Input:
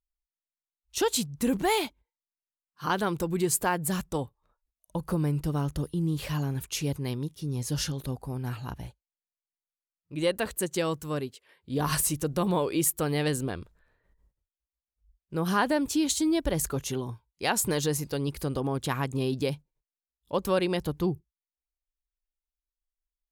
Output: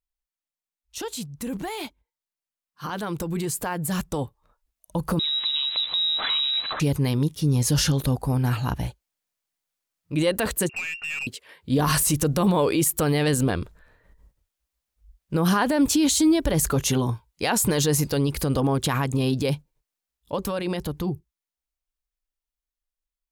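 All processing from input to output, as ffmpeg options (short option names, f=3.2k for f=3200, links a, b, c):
-filter_complex "[0:a]asettb=1/sr,asplit=3[a][b][c];[a]atrim=end=5.194[d];[b]atrim=start=5.19:end=6.8,asetpts=PTS-STARTPTS,afade=t=in:d=0.004:c=qsin,afade=t=out:st=1.606:d=0.004:c=qsin,aeval=exprs='val(0)+0.5*0.0188*sgn(val(0))':c=same,acompressor=threshold=-32dB:ratio=6:attack=3.2:release=140:knee=1:detection=peak,lowpass=f=3.4k:t=q:w=0.5098,lowpass=f=3.4k:t=q:w=0.6013,lowpass=f=3.4k:t=q:w=0.9,lowpass=f=3.4k:t=q:w=2.563,afreqshift=-4000[e];[c]atrim=start=6.796[f];[d][e]acrossfade=d=0.004:c1=hsin:c2=qsin[g];[g][f]acrossfade=d=0.004:c1=qsin:c2=hsin,asettb=1/sr,asplit=3[h][i][j];[h]atrim=end=10.694[k];[i]atrim=start=10.69:end=11.27,asetpts=PTS-STARTPTS,afade=t=in:d=0.004:c=qsin,afade=t=out:st=0.576:d=0.004:c=qsin,lowpass=f=2.5k:t=q:w=0.5098,lowpass=f=2.5k:t=q:w=0.6013,lowpass=f=2.5k:t=q:w=0.9,lowpass=f=2.5k:t=q:w=2.563,afreqshift=-2900,acompressor=threshold=-34dB:ratio=8:attack=3.2:release=140:knee=1:detection=peak,aeval=exprs='(tanh(70.8*val(0)+0.15)-tanh(0.15))/70.8':c=same[l];[j]atrim=start=11.266[m];[k][l]acrossfade=d=0.004:c1=hsin:c2=qsin[n];[n][m]acrossfade=d=0.004:c1=qsin:c2=hsin,bandreject=f=380:w=12,alimiter=limit=-24dB:level=0:latency=1:release=32,dynaudnorm=f=990:g=9:m=11.5dB"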